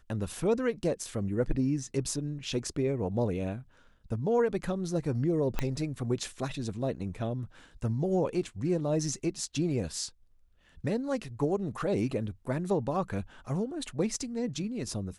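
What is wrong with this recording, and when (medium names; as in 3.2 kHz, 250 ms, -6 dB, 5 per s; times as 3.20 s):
5.59 s: pop -15 dBFS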